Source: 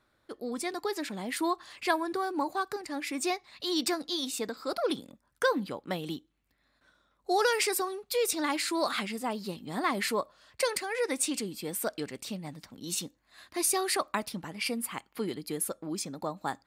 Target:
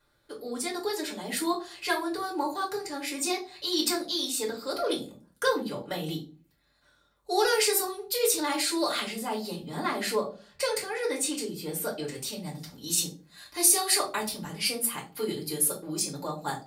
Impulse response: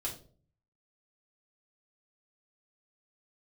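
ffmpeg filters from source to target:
-filter_complex "[0:a]asetnsamples=nb_out_samples=441:pad=0,asendcmd='9.55 highshelf g 2.5;12.07 highshelf g 11',highshelf=frequency=3600:gain=8[link_01];[1:a]atrim=start_sample=2205,asetrate=52920,aresample=44100[link_02];[link_01][link_02]afir=irnorm=-1:irlink=0"

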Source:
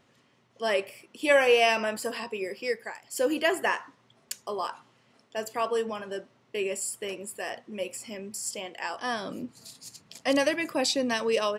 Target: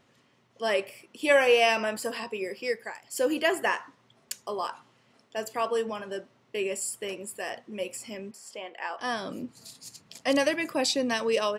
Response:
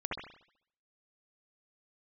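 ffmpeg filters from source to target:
-filter_complex "[0:a]asettb=1/sr,asplit=3[link_01][link_02][link_03];[link_01]atrim=end=8.314[link_04];[link_02]atrim=start=8.31:end=9,asetpts=PTS-STARTPTS,afade=type=in:duration=0.004:curve=qsin,afade=type=out:start_time=0.686:duration=0.004:curve=qsin,bass=frequency=250:gain=-15,treble=frequency=4000:gain=-15[link_05];[link_03]atrim=start=8.996[link_06];[link_04][link_05]acrossfade=duration=0.004:curve1=hsin:curve2=qsin[link_07];[link_07][link_06]acrossfade=duration=0.004:curve1=qsin:curve2=hsin"

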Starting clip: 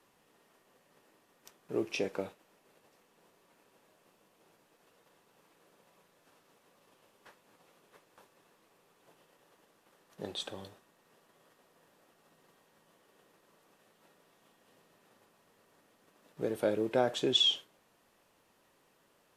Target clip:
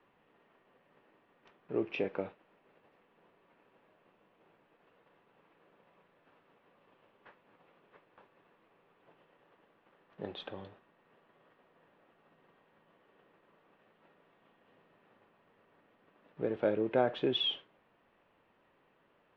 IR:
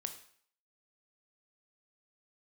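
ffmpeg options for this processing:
-af "lowpass=frequency=2900:width=0.5412,lowpass=frequency=2900:width=1.3066"

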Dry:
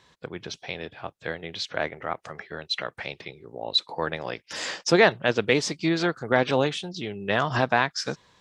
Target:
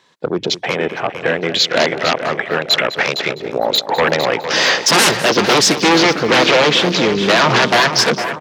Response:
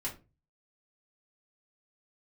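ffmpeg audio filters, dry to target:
-filter_complex "[0:a]aeval=exprs='0.631*sin(PI/2*10*val(0)/0.631)':channel_layout=same,highpass=190,asplit=2[link_01][link_02];[link_02]aecho=0:1:456|912|1368|1824|2280|2736:0.355|0.185|0.0959|0.0499|0.0259|0.0135[link_03];[link_01][link_03]amix=inputs=2:normalize=0,afwtdn=0.112,asplit=2[link_04][link_05];[link_05]aecho=0:1:204:0.178[link_06];[link_04][link_06]amix=inputs=2:normalize=0,volume=-3.5dB"

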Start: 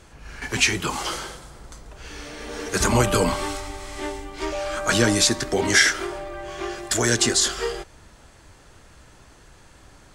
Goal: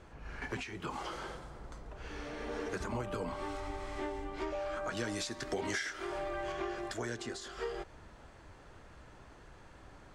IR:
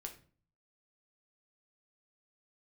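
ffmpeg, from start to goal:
-af "lowshelf=frequency=380:gain=-4.5,acompressor=threshold=-31dB:ratio=12,asetnsamples=nb_out_samples=441:pad=0,asendcmd='4.97 lowpass f 3700;6.52 lowpass f 1400',lowpass=frequency=1100:poles=1,volume=-1dB"

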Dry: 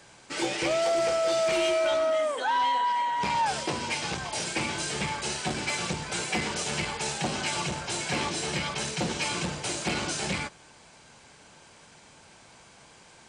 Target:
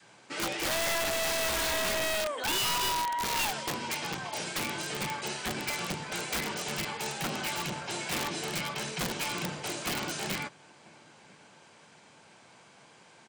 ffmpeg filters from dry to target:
ffmpeg -i in.wav -filter_complex "[0:a]adynamicequalizer=threshold=0.0141:dfrequency=530:dqfactor=1.3:tfrequency=530:tqfactor=1.3:attack=5:release=100:ratio=0.375:range=1.5:mode=cutabove:tftype=bell,acrossover=split=100|3900[link_01][link_02][link_03];[link_01]acrusher=bits=4:mix=0:aa=0.000001[link_04];[link_02]acontrast=21[link_05];[link_04][link_05][link_03]amix=inputs=3:normalize=0,asettb=1/sr,asplit=3[link_06][link_07][link_08];[link_06]atrim=end=1.044[link_09];[link_07]atrim=start=1.04:end=2.14,asetpts=PTS-STARTPTS,afade=type=in:duration=0.004:curve=qsin,afade=type=out:start_time=1.096:duration=0.004:curve=qsin,asuperstop=centerf=780:order=8:qfactor=5.8[link_10];[link_08]atrim=start=2.136[link_11];[link_09][link_10]acrossfade=duration=0.004:curve1=hsin:curve2=qsin[link_12];[link_12][link_11]acrossfade=duration=0.004:curve1=qsin:curve2=hsin,asplit=2[link_13][link_14];[link_14]adelay=991.3,volume=-25dB,highshelf=frequency=4000:gain=-22.3[link_15];[link_13][link_15]amix=inputs=2:normalize=0,aeval=exprs='(mod(7.94*val(0)+1,2)-1)/7.94':channel_layout=same,volume=-7dB" out.wav

